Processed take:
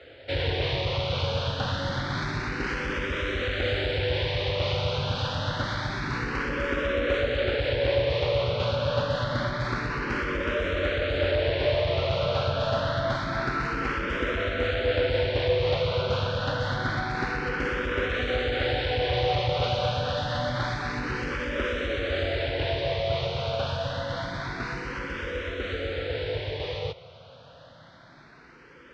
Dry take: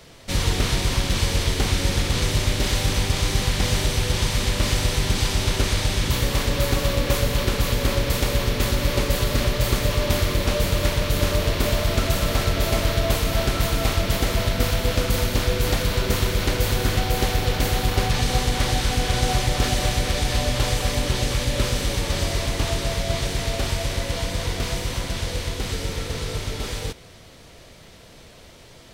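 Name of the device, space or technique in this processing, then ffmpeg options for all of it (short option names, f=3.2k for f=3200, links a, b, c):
barber-pole phaser into a guitar amplifier: -filter_complex "[0:a]asplit=2[a][b];[b]afreqshift=0.27[c];[a][c]amix=inputs=2:normalize=1,asoftclip=type=tanh:threshold=-15.5dB,highpass=82,equalizer=f=200:t=q:w=4:g=-8,equalizer=f=530:t=q:w=4:g=8,equalizer=f=1.5k:t=q:w=4:g=8,lowpass=f=3.9k:w=0.5412,lowpass=f=3.9k:w=1.3066"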